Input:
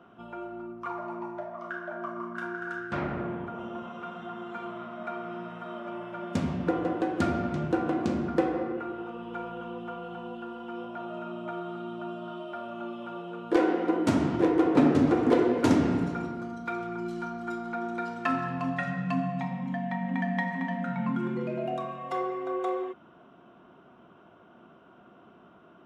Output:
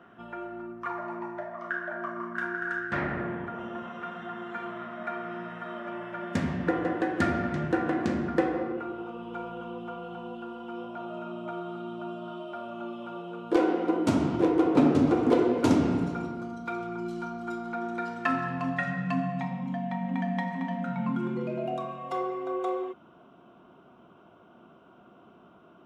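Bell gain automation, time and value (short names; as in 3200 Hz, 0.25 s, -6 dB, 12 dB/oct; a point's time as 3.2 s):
bell 1800 Hz 0.37 oct
8.04 s +12 dB
8.58 s +5 dB
8.99 s -6 dB
17.49 s -6 dB
18.1 s +3.5 dB
19.33 s +3.5 dB
19.74 s -6.5 dB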